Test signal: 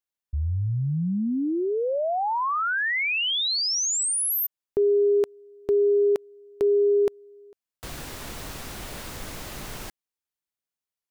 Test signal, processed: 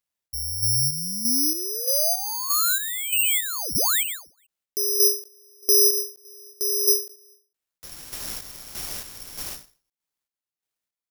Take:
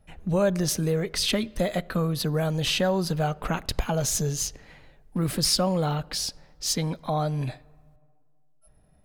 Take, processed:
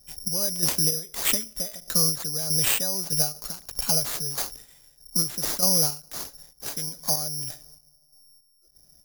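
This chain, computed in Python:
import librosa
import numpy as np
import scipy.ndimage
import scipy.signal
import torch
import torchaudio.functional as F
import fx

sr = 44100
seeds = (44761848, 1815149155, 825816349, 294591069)

y = fx.chopper(x, sr, hz=1.6, depth_pct=60, duty_pct=45)
y = (np.kron(y[::8], np.eye(8)[0]) * 8)[:len(y)]
y = fx.end_taper(y, sr, db_per_s=160.0)
y = y * 10.0 ** (-5.0 / 20.0)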